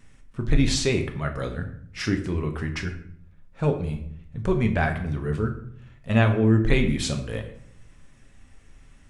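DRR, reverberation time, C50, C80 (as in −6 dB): 4.0 dB, 0.65 s, 10.0 dB, 13.0 dB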